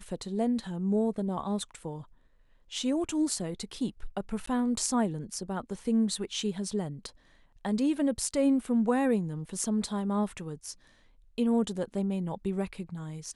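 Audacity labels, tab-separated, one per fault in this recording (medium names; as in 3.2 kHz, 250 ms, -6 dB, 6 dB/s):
4.460000	4.470000	dropout 14 ms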